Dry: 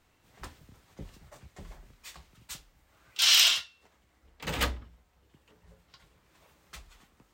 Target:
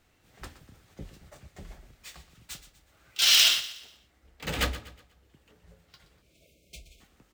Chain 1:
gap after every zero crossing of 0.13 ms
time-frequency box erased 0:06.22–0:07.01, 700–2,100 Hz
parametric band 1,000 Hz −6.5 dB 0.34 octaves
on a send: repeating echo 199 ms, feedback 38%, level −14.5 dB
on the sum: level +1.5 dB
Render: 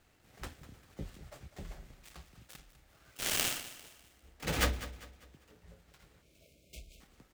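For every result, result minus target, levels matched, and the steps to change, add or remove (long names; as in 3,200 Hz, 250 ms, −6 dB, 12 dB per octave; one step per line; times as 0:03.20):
gap after every zero crossing: distortion +22 dB; echo 77 ms late
change: gap after every zero crossing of 0.025 ms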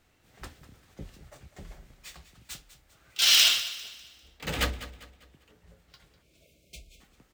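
echo 77 ms late
change: repeating echo 122 ms, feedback 38%, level −14.5 dB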